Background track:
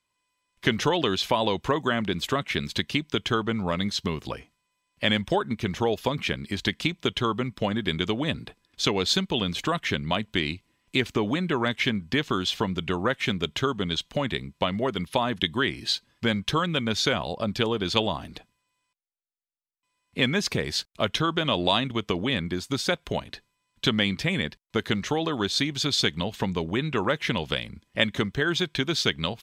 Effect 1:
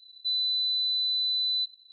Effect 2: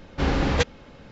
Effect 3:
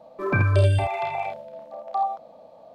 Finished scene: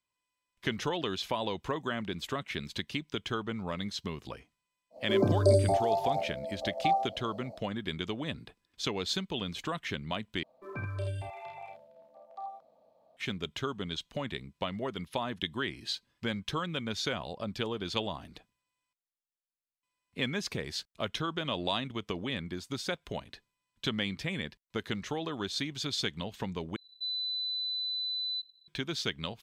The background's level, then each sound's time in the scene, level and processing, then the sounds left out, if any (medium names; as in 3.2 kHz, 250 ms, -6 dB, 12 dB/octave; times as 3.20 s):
background track -9 dB
4.90 s: add 3 -8.5 dB, fades 0.10 s + FFT filter 130 Hz 0 dB, 270 Hz +11 dB, 710 Hz +9 dB, 1.9 kHz -22 dB, 3 kHz -29 dB, 4.3 kHz +12 dB
10.43 s: replace with 3 -17 dB + treble shelf 7.3 kHz +5.5 dB
26.76 s: replace with 1 -7 dB
not used: 2